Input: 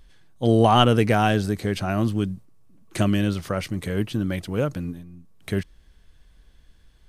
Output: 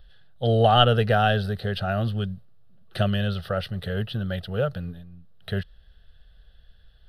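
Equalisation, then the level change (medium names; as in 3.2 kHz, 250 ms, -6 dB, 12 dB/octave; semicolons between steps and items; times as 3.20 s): resonant high shelf 4.9 kHz -6.5 dB, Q 1.5; static phaser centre 1.5 kHz, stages 8; +1.5 dB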